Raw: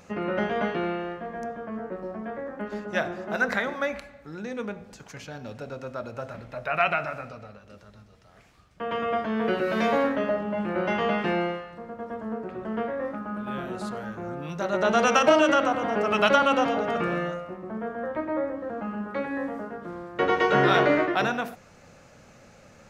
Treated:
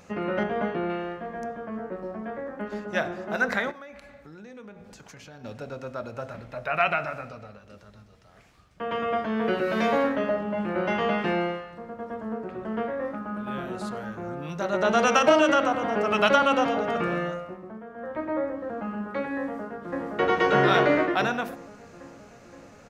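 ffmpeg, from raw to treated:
-filter_complex "[0:a]asettb=1/sr,asplit=3[s0][s1][s2];[s0]atrim=end=0.434[s3];[s1]atrim=start=0.43:end=0.9,asetpts=PTS-STARTPTS,afade=t=in:d=0.004:c=qsin,afade=t=out:st=0.466:d=0.004:c=qsin,highshelf=f=2400:g=-10.5[s4];[s2]atrim=start=0.896[s5];[s3][s4]acrossfade=d=0.004:c1=hsin:c2=qsin[s6];[s6][s5]acrossfade=d=0.004:c1=qsin:c2=hsin,asettb=1/sr,asplit=3[s7][s8][s9];[s7]atrim=end=3.714[s10];[s8]atrim=start=3.71:end=5.44,asetpts=PTS-STARTPTS,afade=t=in:d=0.004:c=qsin,afade=t=out:st=1.726:d=0.004:c=qsin,acompressor=threshold=0.00708:ratio=4:attack=3.2:release=140:knee=1:detection=peak[s11];[s9]atrim=start=5.436[s12];[s10][s11]acrossfade=d=0.004:c1=hsin:c2=qsin[s13];[s13][s12]acrossfade=d=0.004:c1=qsin:c2=hsin,asplit=2[s14][s15];[s15]afade=t=in:st=19.4:d=0.01,afade=t=out:st=20.1:d=0.01,aecho=0:1:520|1040|1560|2080|2600|3120|3640|4160|4680|5200|5720:0.944061|0.61364|0.398866|0.259263|0.168521|0.109538|0.0712|0.04628|0.030082|0.0195533|0.0127096[s16];[s14][s16]amix=inputs=2:normalize=0,asplit=2[s17][s18];[s17]atrim=end=17.86,asetpts=PTS-STARTPTS,afade=t=out:st=17.43:d=0.43:silence=0.281838[s19];[s18]atrim=start=17.86,asetpts=PTS-STARTPTS,afade=t=in:d=0.43:silence=0.281838[s20];[s19][s20]concat=n=2:v=0:a=1"

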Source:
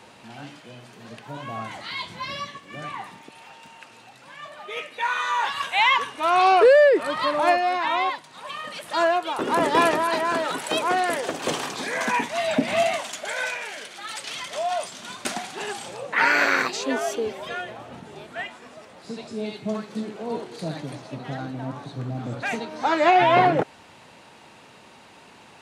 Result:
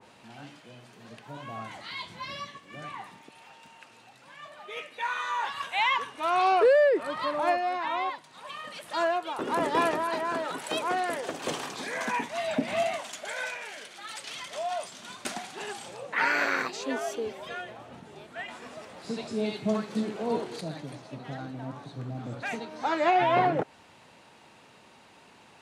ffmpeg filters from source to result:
-filter_complex "[0:a]asettb=1/sr,asplit=3[s0][s1][s2];[s0]atrim=end=18.484[s3];[s1]atrim=start=18.48:end=20.61,asetpts=PTS-STARTPTS,afade=t=in:d=0.004:c=qsin,afade=t=out:st=2.126:d=0.004:c=qsin,acontrast=74[s4];[s2]atrim=start=20.606[s5];[s3][s4]acrossfade=d=0.004:c1=hsin:c2=qsin[s6];[s6][s5]acrossfade=d=0.004:c1=qsin:c2=hsin,adynamicequalizer=threshold=0.0316:dfrequency=1800:dqfactor=0.7:tfrequency=1800:tqfactor=0.7:attack=5:release=100:ratio=0.375:range=2:mode=cutabove:tftype=highshelf,volume=0.501"

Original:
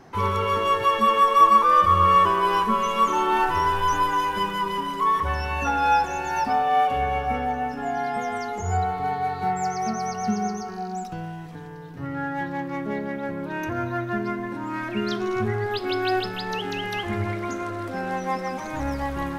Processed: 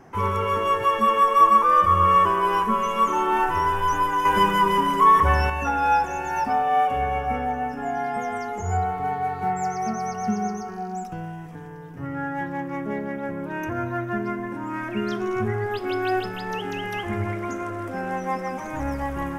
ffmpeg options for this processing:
-filter_complex "[0:a]asettb=1/sr,asplit=3[s0][s1][s2];[s0]atrim=end=4.254[s3];[s1]atrim=start=4.25:end=5.5,asetpts=PTS-STARTPTS,afade=t=in:d=0.004:c=qsin,afade=t=out:st=1.246:d=0.004:c=qsin,acontrast=84[s4];[s2]atrim=start=5.496[s5];[s3][s4]acrossfade=d=0.004:c1=hsin:c2=qsin[s6];[s6][s5]acrossfade=d=0.004:c1=qsin:c2=hsin,equalizer=f=4100:w=2.5:g=-13"

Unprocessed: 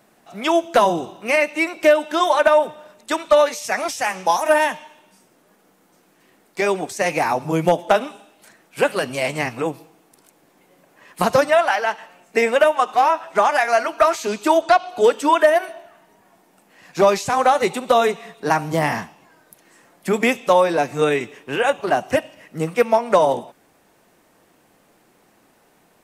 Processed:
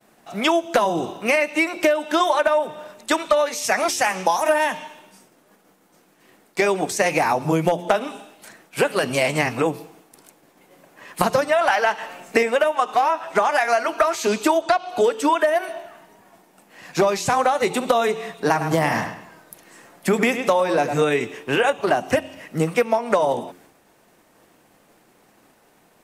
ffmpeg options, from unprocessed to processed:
-filter_complex "[0:a]asettb=1/sr,asplit=3[s0][s1][s2];[s0]atrim=end=11.614[s3];[s1]atrim=start=11.61:end=12.43,asetpts=PTS-STARTPTS,afade=t=in:d=0.004:c=qsin,afade=t=out:st=0.816:d=0.004:c=qsin,acontrast=38[s4];[s2]atrim=start=12.426[s5];[s3][s4]acrossfade=d=0.004:c1=hsin:c2=qsin[s6];[s6][s5]acrossfade=d=0.004:c1=qsin:c2=hsin,asettb=1/sr,asplit=3[s7][s8][s9];[s7]atrim=end=18.384[s10];[s8]atrim=start=18.38:end=21.05,asetpts=PTS-STARTPTS,afade=t=in:d=0.004:c=qsin,afade=t=out:st=2.666:d=0.004:c=qsin,asplit=2[s11][s12];[s12]adelay=104,lowpass=f=3900:p=1,volume=0.282,asplit=2[s13][s14];[s14]adelay=104,lowpass=f=3900:p=1,volume=0.33,asplit=2[s15][s16];[s16]adelay=104,lowpass=f=3900:p=1,volume=0.33,asplit=2[s17][s18];[s18]adelay=104,lowpass=f=3900:p=1,volume=0.33[s19];[s11][s13][s15][s17][s19]amix=inputs=5:normalize=0,atrim=end_sample=117747[s20];[s9]atrim=start=21.046[s21];[s10][s20]acrossfade=d=0.004:c1=hsin:c2=qsin[s22];[s22][s21]acrossfade=d=0.004:c1=qsin:c2=hsin,agate=range=0.0224:threshold=0.00251:ratio=3:detection=peak,bandreject=f=88.59:t=h:w=4,bandreject=f=177.18:t=h:w=4,bandreject=f=265.77:t=h:w=4,bandreject=f=354.36:t=h:w=4,bandreject=f=442.95:t=h:w=4,acompressor=threshold=0.0891:ratio=6,volume=1.88"

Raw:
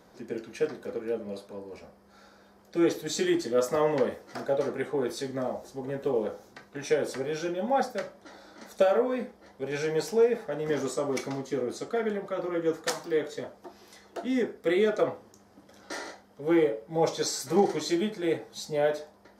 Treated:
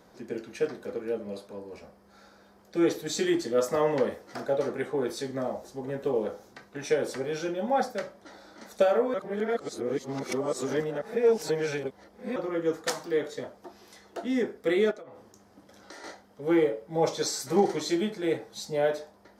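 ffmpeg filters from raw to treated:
-filter_complex "[0:a]asettb=1/sr,asplit=3[s0][s1][s2];[s0]atrim=end=14.914[s3];[s1]atrim=start=14.91:end=16.04,asetpts=PTS-STARTPTS,afade=t=in:d=0.004:c=qsin,afade=t=out:st=1.126:d=0.004:c=qsin,acompressor=threshold=0.00891:ratio=16:attack=3.2:release=140:knee=1:detection=peak[s4];[s2]atrim=start=16.036[s5];[s3][s4]acrossfade=d=0.004:c1=hsin:c2=qsin[s6];[s6][s5]acrossfade=d=0.004:c1=qsin:c2=hsin,asplit=3[s7][s8][s9];[s7]atrim=end=9.142[s10];[s8]atrim=start=9.138:end=12.362,asetpts=PTS-STARTPTS,areverse[s11];[s9]atrim=start=12.358[s12];[s10][s11]acrossfade=d=0.004:c1=hsin:c2=hsin[s13];[s13][s12]acrossfade=d=0.004:c1=hsin:c2=hsin"

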